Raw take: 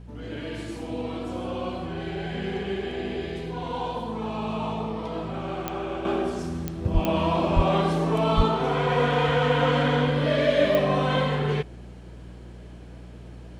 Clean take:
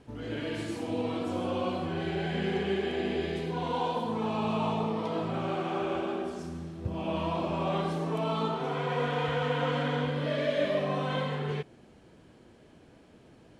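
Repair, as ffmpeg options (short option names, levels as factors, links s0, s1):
-filter_complex "[0:a]adeclick=t=4,bandreject=f=59.8:t=h:w=4,bandreject=f=119.6:t=h:w=4,bandreject=f=179.4:t=h:w=4,asplit=3[s0][s1][s2];[s0]afade=t=out:st=6.93:d=0.02[s3];[s1]highpass=f=140:w=0.5412,highpass=f=140:w=1.3066,afade=t=in:st=6.93:d=0.02,afade=t=out:st=7.05:d=0.02[s4];[s2]afade=t=in:st=7.05:d=0.02[s5];[s3][s4][s5]amix=inputs=3:normalize=0,asplit=3[s6][s7][s8];[s6]afade=t=out:st=7.55:d=0.02[s9];[s7]highpass=f=140:w=0.5412,highpass=f=140:w=1.3066,afade=t=in:st=7.55:d=0.02,afade=t=out:st=7.67:d=0.02[s10];[s8]afade=t=in:st=7.67:d=0.02[s11];[s9][s10][s11]amix=inputs=3:normalize=0,asplit=3[s12][s13][s14];[s12]afade=t=out:st=8.36:d=0.02[s15];[s13]highpass=f=140:w=0.5412,highpass=f=140:w=1.3066,afade=t=in:st=8.36:d=0.02,afade=t=out:st=8.48:d=0.02[s16];[s14]afade=t=in:st=8.48:d=0.02[s17];[s15][s16][s17]amix=inputs=3:normalize=0,asetnsamples=n=441:p=0,asendcmd='6.05 volume volume -7.5dB',volume=1"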